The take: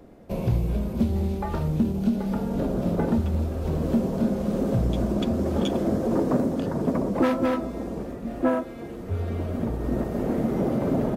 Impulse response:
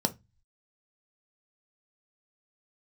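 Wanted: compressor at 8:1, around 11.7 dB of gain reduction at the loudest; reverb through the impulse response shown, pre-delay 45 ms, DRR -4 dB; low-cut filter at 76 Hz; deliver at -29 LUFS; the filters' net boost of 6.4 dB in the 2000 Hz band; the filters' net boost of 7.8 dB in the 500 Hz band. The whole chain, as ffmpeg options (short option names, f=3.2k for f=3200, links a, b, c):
-filter_complex "[0:a]highpass=76,equalizer=f=500:t=o:g=9,equalizer=f=2k:t=o:g=7.5,acompressor=threshold=-25dB:ratio=8,asplit=2[a][b];[1:a]atrim=start_sample=2205,adelay=45[c];[b][c]afir=irnorm=-1:irlink=0,volume=-3.5dB[d];[a][d]amix=inputs=2:normalize=0,volume=-10.5dB"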